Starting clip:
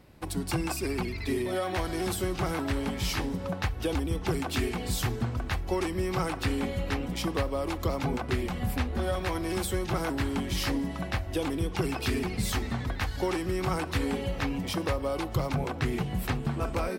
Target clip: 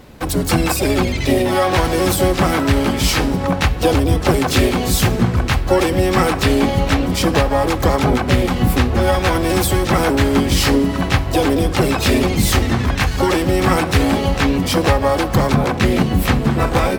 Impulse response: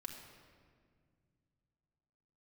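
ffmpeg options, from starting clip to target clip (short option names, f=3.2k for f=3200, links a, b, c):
-filter_complex "[0:a]acontrast=86,asplit=3[a][b][c];[b]asetrate=66075,aresample=44100,atempo=0.66742,volume=-5dB[d];[c]asetrate=88200,aresample=44100,atempo=0.5,volume=-15dB[e];[a][d][e]amix=inputs=3:normalize=0,asplit=2[f][g];[1:a]atrim=start_sample=2205[h];[g][h]afir=irnorm=-1:irlink=0,volume=-6.5dB[i];[f][i]amix=inputs=2:normalize=0,volume=4dB"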